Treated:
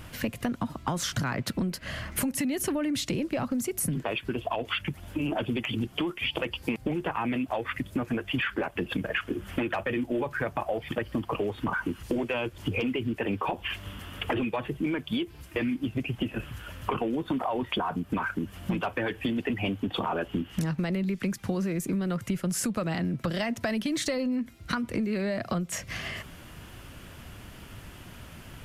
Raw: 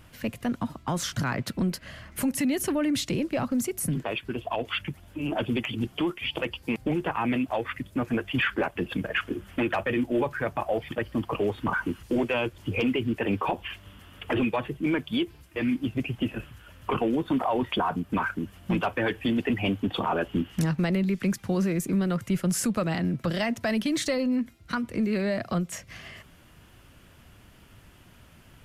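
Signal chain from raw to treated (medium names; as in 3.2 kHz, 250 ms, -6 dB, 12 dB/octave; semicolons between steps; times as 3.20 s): compression 6:1, threshold -35 dBFS, peak gain reduction 13 dB; trim +8 dB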